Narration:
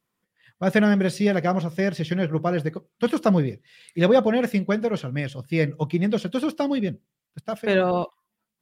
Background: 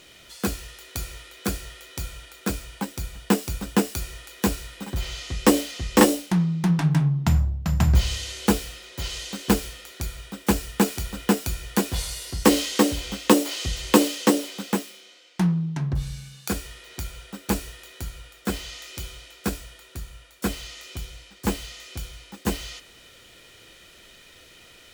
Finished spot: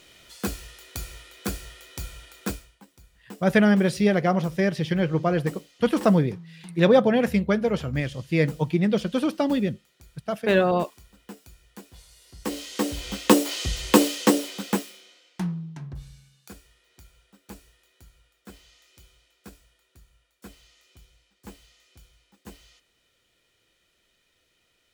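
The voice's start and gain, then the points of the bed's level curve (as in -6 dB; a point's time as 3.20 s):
2.80 s, +0.5 dB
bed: 2.50 s -3 dB
2.79 s -22 dB
12.07 s -22 dB
13.16 s 0 dB
14.72 s 0 dB
16.65 s -19 dB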